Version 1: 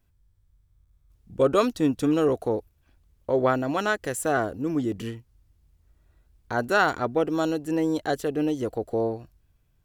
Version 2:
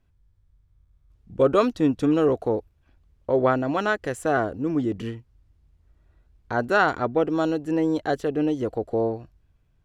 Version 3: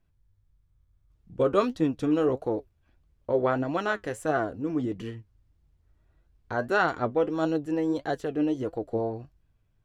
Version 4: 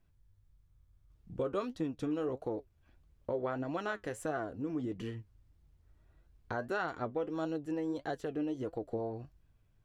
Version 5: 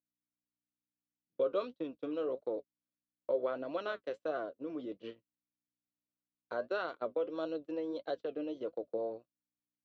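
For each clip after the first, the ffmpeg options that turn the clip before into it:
ffmpeg -i in.wav -af "aemphasis=mode=reproduction:type=50fm,volume=1.5dB" out.wav
ffmpeg -i in.wav -af "flanger=delay=5.8:depth=4.4:regen=60:speed=1.6:shape=sinusoidal" out.wav
ffmpeg -i in.wav -af "acompressor=threshold=-37dB:ratio=2.5" out.wav
ffmpeg -i in.wav -af "aeval=exprs='val(0)+0.00282*(sin(2*PI*60*n/s)+sin(2*PI*2*60*n/s)/2+sin(2*PI*3*60*n/s)/3+sin(2*PI*4*60*n/s)/4+sin(2*PI*5*60*n/s)/5)':channel_layout=same,agate=range=-32dB:threshold=-39dB:ratio=16:detection=peak,highpass=370,equalizer=frequency=560:width_type=q:width=4:gain=8,equalizer=frequency=820:width_type=q:width=4:gain=-9,equalizer=frequency=1800:width_type=q:width=4:gain=-9,equalizer=frequency=3800:width_type=q:width=4:gain=5,lowpass=frequency=4600:width=0.5412,lowpass=frequency=4600:width=1.3066" out.wav

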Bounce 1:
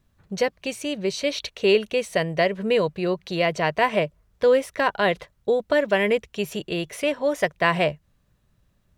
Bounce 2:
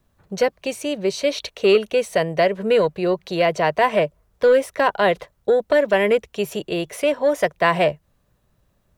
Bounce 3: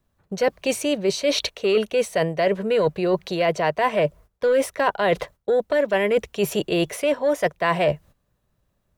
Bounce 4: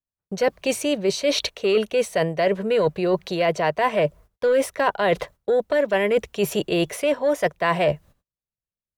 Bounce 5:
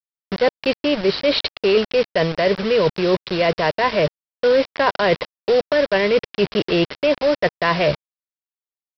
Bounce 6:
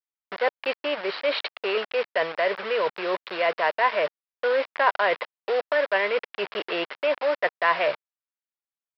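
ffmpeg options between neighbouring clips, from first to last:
ffmpeg -i in.wav -filter_complex "[0:a]highshelf=frequency=9200:gain=6,acrossover=split=370|1100|3500[link_01][link_02][link_03][link_04];[link_02]aeval=exprs='0.237*sin(PI/2*1.41*val(0)/0.237)':channel_layout=same[link_05];[link_01][link_05][link_03][link_04]amix=inputs=4:normalize=0" out.wav
ffmpeg -i in.wav -af "agate=range=-13dB:threshold=-46dB:ratio=16:detection=peak,areverse,acompressor=threshold=-25dB:ratio=6,areverse,volume=7dB" out.wav
ffmpeg -i in.wav -af "agate=range=-29dB:threshold=-55dB:ratio=16:detection=peak" out.wav
ffmpeg -i in.wav -af "aresample=11025,acrusher=bits=4:mix=0:aa=0.000001,aresample=44100,adynamicequalizer=threshold=0.0141:dfrequency=740:dqfactor=3:tfrequency=740:tqfactor=3:attack=5:release=100:ratio=0.375:range=2.5:mode=cutabove:tftype=bell,volume=3.5dB" out.wav
ffmpeg -i in.wav -af "highpass=760,lowpass=2300" out.wav

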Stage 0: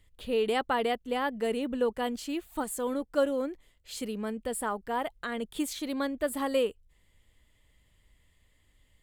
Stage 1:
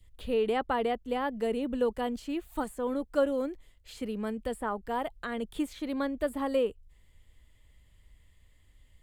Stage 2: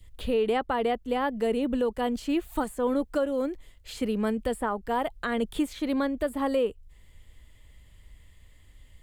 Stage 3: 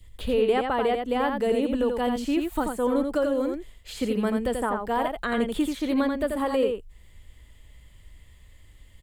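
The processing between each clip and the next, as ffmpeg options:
ffmpeg -i in.wav -filter_complex "[0:a]acrossover=split=110|2700[link_01][link_02][link_03];[link_01]acontrast=75[link_04];[link_02]adynamicequalizer=threshold=0.00447:dfrequency=1800:dqfactor=0.96:tfrequency=1800:tqfactor=0.96:attack=5:release=100:ratio=0.375:range=2.5:mode=cutabove:tftype=bell[link_05];[link_03]acompressor=threshold=-51dB:ratio=6[link_06];[link_04][link_05][link_06]amix=inputs=3:normalize=0" out.wav
ffmpeg -i in.wav -af "alimiter=level_in=0.5dB:limit=-24dB:level=0:latency=1:release=479,volume=-0.5dB,volume=7dB" out.wav
ffmpeg -i in.wav -af "aecho=1:1:86:0.562,volume=1.5dB" out.wav

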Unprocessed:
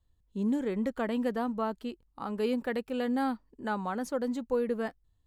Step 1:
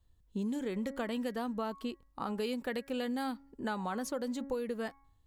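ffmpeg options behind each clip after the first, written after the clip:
ffmpeg -i in.wav -filter_complex "[0:a]bandreject=frequency=275.7:width_type=h:width=4,bandreject=frequency=551.4:width_type=h:width=4,bandreject=frequency=827.1:width_type=h:width=4,bandreject=frequency=1102.8:width_type=h:width=4,bandreject=frequency=1378.5:width_type=h:width=4,bandreject=frequency=1654.2:width_type=h:width=4,bandreject=frequency=1929.9:width_type=h:width=4,bandreject=frequency=2205.6:width_type=h:width=4,acrossover=split=2600[link_01][link_02];[link_01]acompressor=threshold=-36dB:ratio=6[link_03];[link_03][link_02]amix=inputs=2:normalize=0,volume=3dB" out.wav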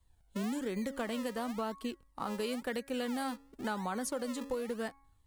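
ffmpeg -i in.wav -filter_complex "[0:a]equalizer=frequency=9100:width_type=o:width=0.43:gain=9,acrossover=split=250[link_01][link_02];[link_01]acrusher=samples=40:mix=1:aa=0.000001:lfo=1:lforange=40:lforate=0.96[link_03];[link_03][link_02]amix=inputs=2:normalize=0" out.wav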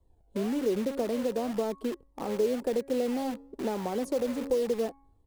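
ffmpeg -i in.wav -filter_complex "[0:a]firequalizer=gain_entry='entry(140,0);entry(390,12);entry(1400,-12)':delay=0.05:min_phase=1,asplit=2[link_01][link_02];[link_02]aeval=exprs='(mod(53.1*val(0)+1,2)-1)/53.1':channel_layout=same,volume=-7dB[link_03];[link_01][link_03]amix=inputs=2:normalize=0" out.wav

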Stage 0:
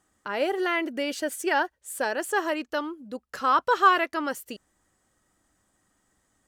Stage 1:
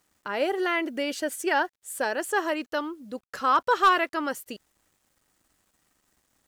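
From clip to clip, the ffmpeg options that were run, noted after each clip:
ffmpeg -i in.wav -af "volume=13dB,asoftclip=hard,volume=-13dB,acrusher=bits=10:mix=0:aa=0.000001" out.wav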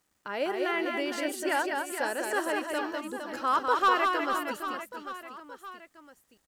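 ffmpeg -i in.wav -af "aecho=1:1:200|460|798|1237|1809:0.631|0.398|0.251|0.158|0.1,volume=-4.5dB" out.wav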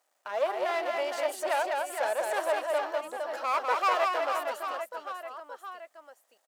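ffmpeg -i in.wav -af "aeval=exprs='clip(val(0),-1,0.0168)':channel_layout=same,highpass=frequency=630:width_type=q:width=3.5,volume=-1.5dB" out.wav

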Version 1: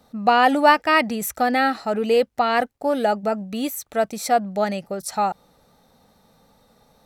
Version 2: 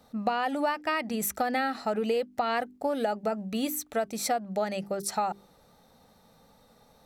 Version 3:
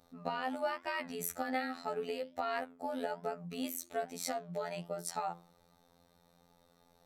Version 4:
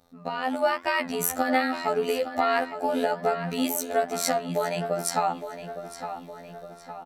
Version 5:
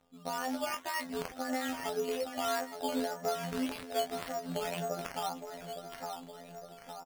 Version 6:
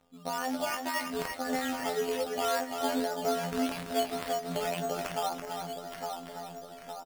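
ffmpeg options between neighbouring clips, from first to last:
ffmpeg -i in.wav -af "bandreject=frequency=50:width_type=h:width=6,bandreject=frequency=100:width_type=h:width=6,bandreject=frequency=150:width_type=h:width=6,bandreject=frequency=200:width_type=h:width=6,bandreject=frequency=250:width_type=h:width=6,bandreject=frequency=300:width_type=h:width=6,bandreject=frequency=350:width_type=h:width=6,bandreject=frequency=400:width_type=h:width=6,acompressor=threshold=-22dB:ratio=16,volume=-2dB" out.wav
ffmpeg -i in.wav -af "flanger=delay=8.4:depth=7.2:regen=-80:speed=1.2:shape=triangular,afftfilt=real='hypot(re,im)*cos(PI*b)':imag='0':win_size=2048:overlap=0.75" out.wav
ffmpeg -i in.wav -filter_complex "[0:a]dynaudnorm=framelen=130:gausssize=7:maxgain=9dB,asplit=2[link_01][link_02];[link_02]adelay=862,lowpass=frequency=4300:poles=1,volume=-10dB,asplit=2[link_03][link_04];[link_04]adelay=862,lowpass=frequency=4300:poles=1,volume=0.54,asplit=2[link_05][link_06];[link_06]adelay=862,lowpass=frequency=4300:poles=1,volume=0.54,asplit=2[link_07][link_08];[link_08]adelay=862,lowpass=frequency=4300:poles=1,volume=0.54,asplit=2[link_09][link_10];[link_10]adelay=862,lowpass=frequency=4300:poles=1,volume=0.54,asplit=2[link_11][link_12];[link_12]adelay=862,lowpass=frequency=4300:poles=1,volume=0.54[link_13];[link_01][link_03][link_05][link_07][link_09][link_11][link_13]amix=inputs=7:normalize=0,volume=3dB" out.wav
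ffmpeg -i in.wav -filter_complex "[0:a]alimiter=limit=-14dB:level=0:latency=1:release=309,asplit=2[link_01][link_02];[link_02]adelay=19,volume=-5.5dB[link_03];[link_01][link_03]amix=inputs=2:normalize=0,acrusher=samples=9:mix=1:aa=0.000001:lfo=1:lforange=5.4:lforate=1.8,volume=-7.5dB" out.wav
ffmpeg -i in.wav -af "aecho=1:1:334:0.501,volume=2.5dB" out.wav

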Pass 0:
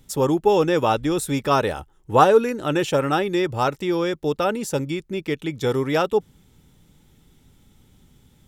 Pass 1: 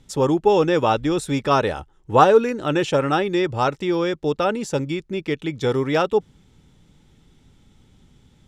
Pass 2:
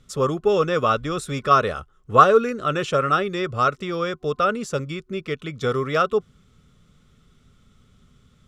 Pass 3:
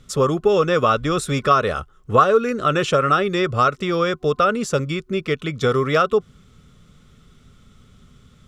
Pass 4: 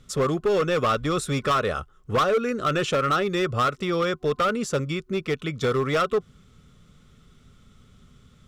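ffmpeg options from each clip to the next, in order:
ffmpeg -i in.wav -af "lowpass=6900,volume=1dB" out.wav
ffmpeg -i in.wav -af "superequalizer=6b=0.447:9b=0.355:10b=2.51,volume=-2dB" out.wav
ffmpeg -i in.wav -af "acompressor=threshold=-20dB:ratio=2.5,volume=6dB" out.wav
ffmpeg -i in.wav -af "volume=14dB,asoftclip=hard,volume=-14dB,volume=-3.5dB" out.wav

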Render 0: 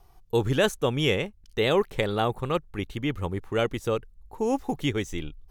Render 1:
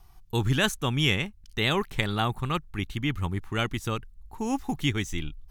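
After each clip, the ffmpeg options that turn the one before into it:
ffmpeg -i in.wav -af "equalizer=frequency=500:width_type=o:width=0.95:gain=-14.5,volume=3dB" out.wav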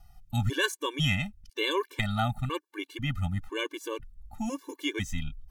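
ffmpeg -i in.wav -af "afftfilt=real='re*gt(sin(2*PI*1*pts/sr)*(1-2*mod(floor(b*sr/1024/300),2)),0)':imag='im*gt(sin(2*PI*1*pts/sr)*(1-2*mod(floor(b*sr/1024/300),2)),0)':win_size=1024:overlap=0.75" out.wav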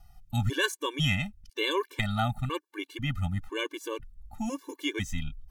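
ffmpeg -i in.wav -af anull out.wav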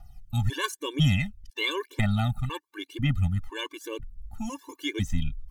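ffmpeg -i in.wav -af "aphaser=in_gain=1:out_gain=1:delay=1.2:decay=0.62:speed=0.98:type=triangular,volume=-1.5dB" out.wav

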